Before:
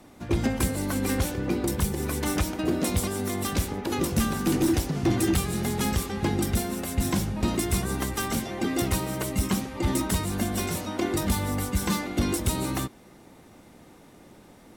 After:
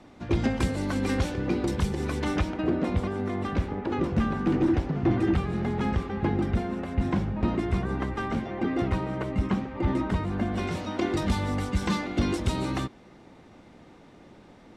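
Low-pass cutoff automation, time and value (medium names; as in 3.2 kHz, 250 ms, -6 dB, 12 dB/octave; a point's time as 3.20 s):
2.07 s 4.8 kHz
2.81 s 2 kHz
10.45 s 2 kHz
10.87 s 4.5 kHz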